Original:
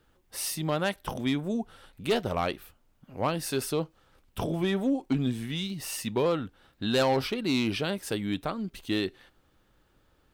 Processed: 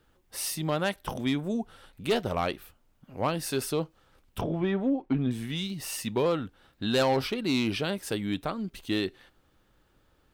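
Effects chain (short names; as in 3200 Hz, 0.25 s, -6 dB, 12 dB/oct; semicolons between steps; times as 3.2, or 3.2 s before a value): 4.41–5.31 LPF 2300 Hz 12 dB/oct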